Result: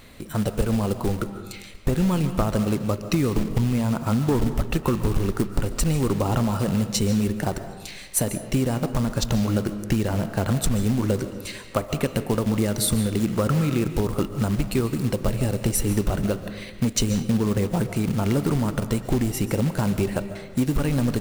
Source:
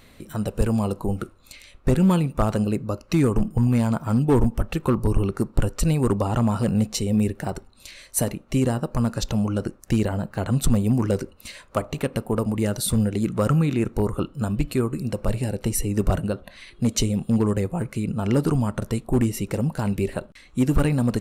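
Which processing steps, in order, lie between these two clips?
compressor 20:1, threshold -21 dBFS, peak gain reduction 8.5 dB; short-mantissa float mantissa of 2-bit; digital reverb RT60 1.2 s, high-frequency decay 0.55×, pre-delay 0.1 s, DRR 10 dB; gain +3.5 dB

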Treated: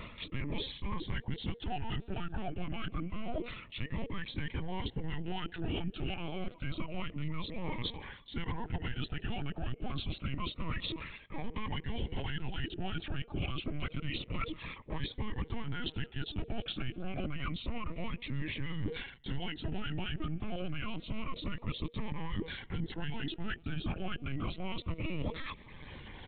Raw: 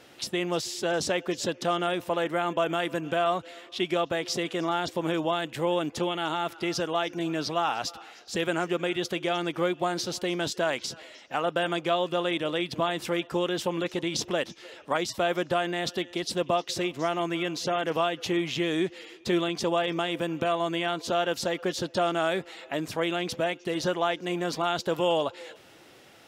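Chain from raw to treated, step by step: feedback echo 0.167 s, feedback 35%, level -22 dB; added harmonics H 6 -22 dB, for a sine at -11 dBFS; in parallel at +1 dB: limiter -21.5 dBFS, peak gain reduction 9.5 dB; on the sum: reverb removal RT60 0.99 s; soft clip -16.5 dBFS, distortion -18 dB; frequency shift -480 Hz; LPC vocoder at 8 kHz pitch kept; reverse; compressor 5:1, threshold -37 dBFS, peak gain reduction 16.5 dB; reverse; cascading phaser falling 0.28 Hz; gain +4 dB

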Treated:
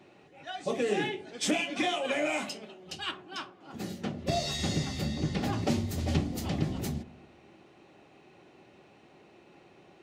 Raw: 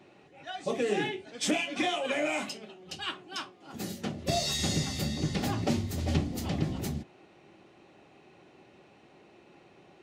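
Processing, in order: 3.11–5.53 high shelf 5800 Hz -10 dB; dark delay 0.103 s, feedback 56%, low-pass 980 Hz, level -17 dB

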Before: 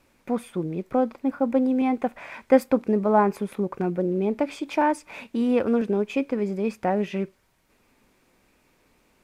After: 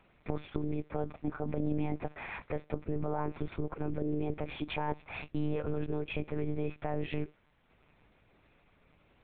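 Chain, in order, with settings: compressor 6:1, threshold -22 dBFS, peak gain reduction 11.5 dB; limiter -24 dBFS, peak gain reduction 11.5 dB; monotone LPC vocoder at 8 kHz 150 Hz; gain -2 dB

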